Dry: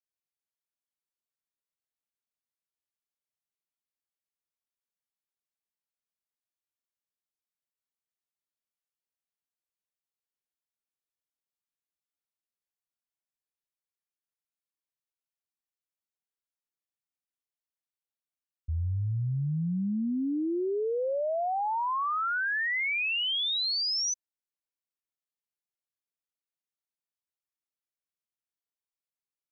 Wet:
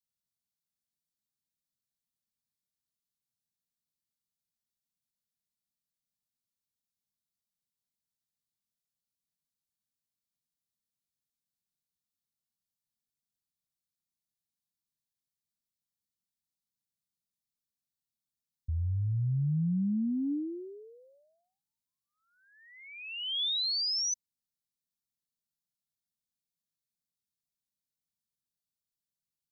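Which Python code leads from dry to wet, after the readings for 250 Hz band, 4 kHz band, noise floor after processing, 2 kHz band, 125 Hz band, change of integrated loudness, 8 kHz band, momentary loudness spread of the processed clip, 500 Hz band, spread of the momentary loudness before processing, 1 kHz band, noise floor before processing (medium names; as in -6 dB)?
-1.5 dB, -2.5 dB, under -85 dBFS, -19.0 dB, 0.0 dB, -2.0 dB, no reading, 16 LU, -18.5 dB, 5 LU, under -40 dB, under -85 dBFS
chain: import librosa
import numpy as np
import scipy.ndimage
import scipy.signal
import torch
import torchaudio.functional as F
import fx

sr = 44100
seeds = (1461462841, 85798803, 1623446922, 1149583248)

p1 = scipy.signal.sosfilt(scipy.signal.ellip(3, 1.0, 80, [240.0, 3800.0], 'bandstop', fs=sr, output='sos'), x)
p2 = fx.peak_eq(p1, sr, hz=150.0, db=7.5, octaves=1.6)
p3 = fx.over_compress(p2, sr, threshold_db=-33.0, ratio=-1.0)
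p4 = p2 + (p3 * 10.0 ** (1.0 / 20.0))
y = p4 * 10.0 ** (-7.5 / 20.0)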